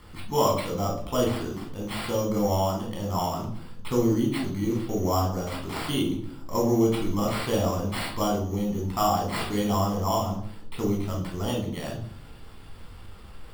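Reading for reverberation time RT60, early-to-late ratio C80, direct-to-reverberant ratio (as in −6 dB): 0.65 s, 11.0 dB, −1.0 dB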